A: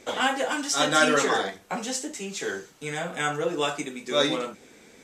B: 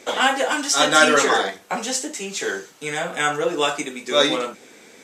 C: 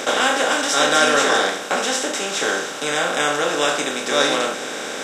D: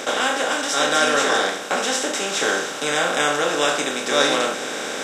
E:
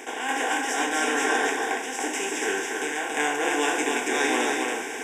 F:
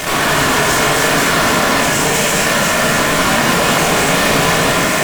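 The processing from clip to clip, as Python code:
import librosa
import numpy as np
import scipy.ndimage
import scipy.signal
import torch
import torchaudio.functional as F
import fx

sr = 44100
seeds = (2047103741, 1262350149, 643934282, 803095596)

y1 = fx.highpass(x, sr, hz=300.0, slope=6)
y1 = y1 * 10.0 ** (6.5 / 20.0)
y2 = fx.bin_compress(y1, sr, power=0.4)
y2 = y2 * 10.0 ** (-5.0 / 20.0)
y3 = fx.rider(y2, sr, range_db=3, speed_s=2.0)
y3 = y3 * 10.0 ** (-1.5 / 20.0)
y4 = fx.tremolo_random(y3, sr, seeds[0], hz=3.5, depth_pct=55)
y4 = fx.fixed_phaser(y4, sr, hz=850.0, stages=8)
y4 = y4 + 10.0 ** (-3.5 / 20.0) * np.pad(y4, (int(280 * sr / 1000.0), 0))[:len(y4)]
y5 = fx.cycle_switch(y4, sr, every=2, mode='inverted')
y5 = fx.fuzz(y5, sr, gain_db=46.0, gate_db=-41.0)
y5 = fx.room_shoebox(y5, sr, seeds[1], volume_m3=760.0, walls='furnished', distance_m=3.3)
y5 = y5 * 10.0 ** (-3.5 / 20.0)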